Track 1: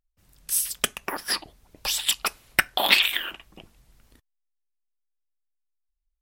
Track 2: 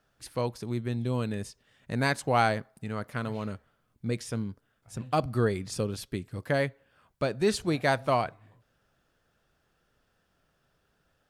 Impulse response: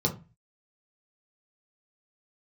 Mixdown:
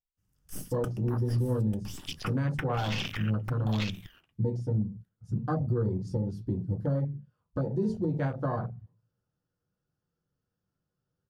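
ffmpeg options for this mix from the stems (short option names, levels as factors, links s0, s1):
-filter_complex "[0:a]aeval=exprs='(tanh(7.08*val(0)+0.75)-tanh(0.75))/7.08':c=same,volume=1.12,asplit=3[s0][s1][s2];[s1]volume=0.224[s3];[s2]volume=0.398[s4];[1:a]adelay=350,volume=0.596,asplit=2[s5][s6];[s6]volume=0.531[s7];[2:a]atrim=start_sample=2205[s8];[s3][s7]amix=inputs=2:normalize=0[s9];[s9][s8]afir=irnorm=-1:irlink=0[s10];[s4]aecho=0:1:894:1[s11];[s0][s5][s10][s11]amix=inputs=4:normalize=0,afwtdn=0.0251,alimiter=limit=0.0944:level=0:latency=1:release=245"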